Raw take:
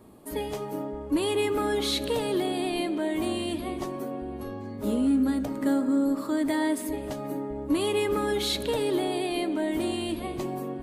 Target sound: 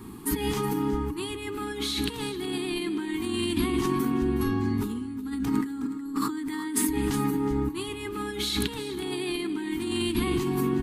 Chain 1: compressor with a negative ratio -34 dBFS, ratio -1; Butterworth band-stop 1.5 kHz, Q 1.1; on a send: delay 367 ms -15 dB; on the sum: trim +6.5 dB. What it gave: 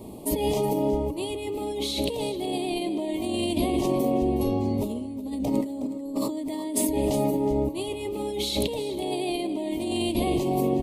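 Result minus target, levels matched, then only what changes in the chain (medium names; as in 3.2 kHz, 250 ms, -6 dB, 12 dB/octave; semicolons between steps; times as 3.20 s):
2 kHz band -6.5 dB
change: Butterworth band-stop 590 Hz, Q 1.1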